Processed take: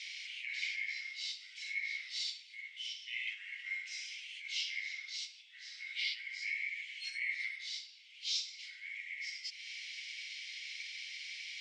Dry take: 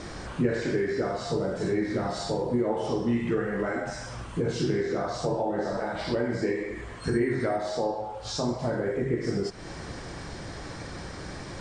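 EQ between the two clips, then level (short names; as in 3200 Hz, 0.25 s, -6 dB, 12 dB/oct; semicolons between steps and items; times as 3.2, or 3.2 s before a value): rippled Chebyshev high-pass 2100 Hz, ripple 3 dB; air absorption 230 m; +12.0 dB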